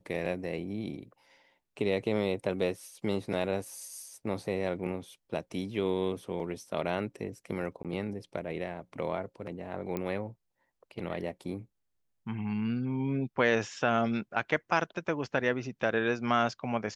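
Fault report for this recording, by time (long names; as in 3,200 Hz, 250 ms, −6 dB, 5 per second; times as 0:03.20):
0:07.83–0:07.85: drop-out 17 ms
0:09.97: click −20 dBFS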